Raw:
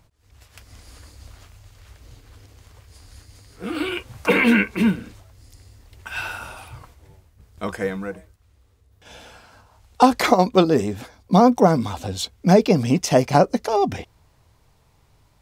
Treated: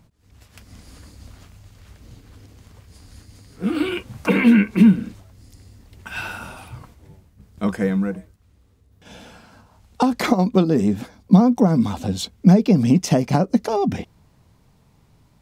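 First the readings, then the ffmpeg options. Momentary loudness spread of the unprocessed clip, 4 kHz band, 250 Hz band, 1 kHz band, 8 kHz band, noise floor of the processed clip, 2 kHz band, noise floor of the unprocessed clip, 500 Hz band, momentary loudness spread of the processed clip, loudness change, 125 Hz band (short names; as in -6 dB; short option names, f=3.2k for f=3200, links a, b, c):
16 LU, -3.0 dB, +4.0 dB, -6.0 dB, -2.5 dB, -57 dBFS, -4.0 dB, -59 dBFS, -4.0 dB, 16 LU, +1.0 dB, +4.0 dB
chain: -af "acompressor=threshold=-17dB:ratio=6,equalizer=f=200:t=o:w=1.2:g=12,volume=-1dB"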